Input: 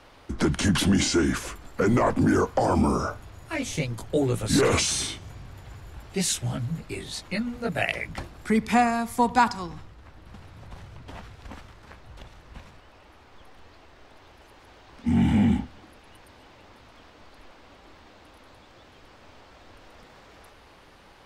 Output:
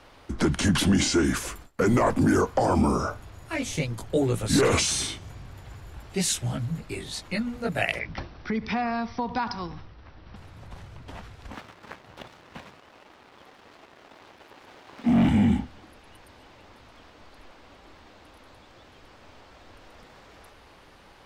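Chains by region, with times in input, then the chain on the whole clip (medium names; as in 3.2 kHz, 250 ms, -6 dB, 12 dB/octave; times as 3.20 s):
1.24–2.42 s: gate with hold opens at -31 dBFS, closes at -34 dBFS + treble shelf 7.9 kHz +7 dB
7.99–10.36 s: compression 4:1, threshold -24 dBFS + brick-wall FIR low-pass 6 kHz
11.54–15.29 s: high-pass 170 Hz + peaking EQ 9.2 kHz -10.5 dB 1.3 oct + waveshaping leveller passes 2
whole clip: none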